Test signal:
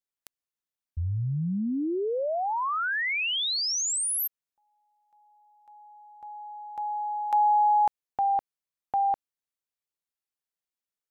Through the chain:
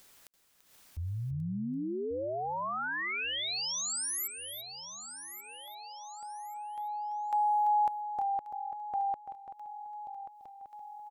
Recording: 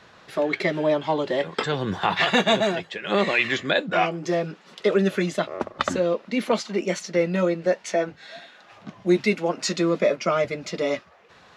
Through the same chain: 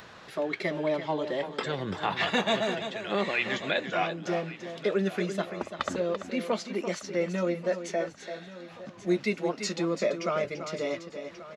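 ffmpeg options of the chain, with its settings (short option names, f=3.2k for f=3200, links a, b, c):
-filter_complex "[0:a]asplit=2[a][b];[b]aecho=0:1:1134|2268|3402:0.141|0.0438|0.0136[c];[a][c]amix=inputs=2:normalize=0,acompressor=mode=upward:threshold=-31dB:ratio=4:attack=0.33:release=288:knee=2.83:detection=peak,asplit=2[d][e];[e]aecho=0:1:338:0.335[f];[d][f]amix=inputs=2:normalize=0,volume=-7dB"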